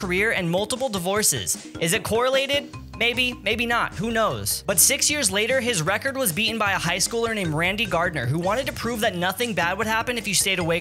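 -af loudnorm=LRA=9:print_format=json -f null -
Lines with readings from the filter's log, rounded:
"input_i" : "-21.9",
"input_tp" : "-2.0",
"input_lra" : "2.5",
"input_thresh" : "-32.0",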